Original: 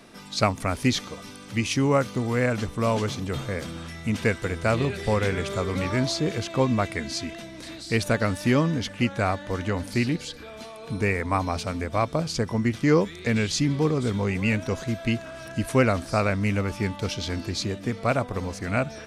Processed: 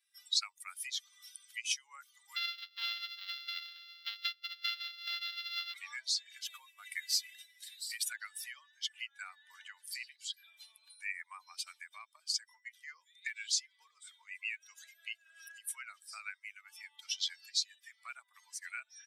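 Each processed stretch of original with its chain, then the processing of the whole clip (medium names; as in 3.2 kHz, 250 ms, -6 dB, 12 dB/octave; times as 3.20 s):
2.36–5.74 s: sorted samples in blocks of 64 samples + resonant high shelf 5.8 kHz -13.5 dB, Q 3
6.44–8.12 s: CVSD coder 64 kbps + compression 5:1, threshold -25 dBFS
whole clip: expander on every frequency bin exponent 2; compression 12:1, threshold -39 dBFS; Bessel high-pass 2.4 kHz, order 6; trim +12 dB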